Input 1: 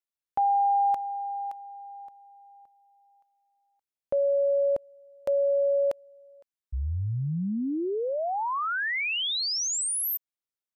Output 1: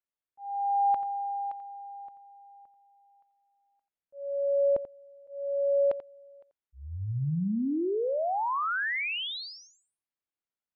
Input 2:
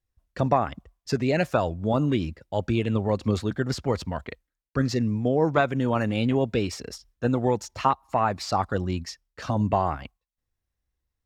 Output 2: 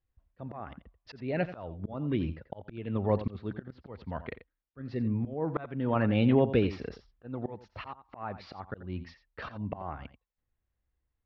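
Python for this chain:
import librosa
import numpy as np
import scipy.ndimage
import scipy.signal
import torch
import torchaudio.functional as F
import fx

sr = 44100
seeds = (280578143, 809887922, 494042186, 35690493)

y = scipy.signal.sosfilt(scipy.signal.bessel(8, 2400.0, 'lowpass', norm='mag', fs=sr, output='sos'), x)
y = fx.auto_swell(y, sr, attack_ms=543.0)
y = y + 10.0 ** (-13.5 / 20.0) * np.pad(y, (int(87 * sr / 1000.0), 0))[:len(y)]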